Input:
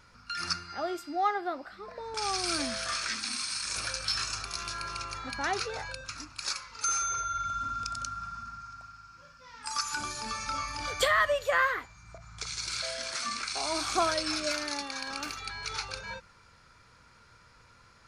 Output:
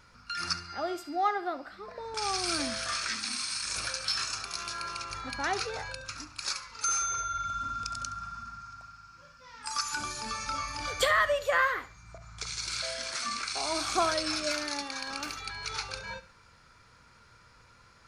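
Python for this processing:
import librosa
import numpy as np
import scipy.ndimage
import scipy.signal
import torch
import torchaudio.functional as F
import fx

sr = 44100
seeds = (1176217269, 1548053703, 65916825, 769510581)

y = fx.low_shelf(x, sr, hz=110.0, db=-10.5, at=(3.88, 5.1))
y = fx.echo_feedback(y, sr, ms=70, feedback_pct=31, wet_db=-16.5)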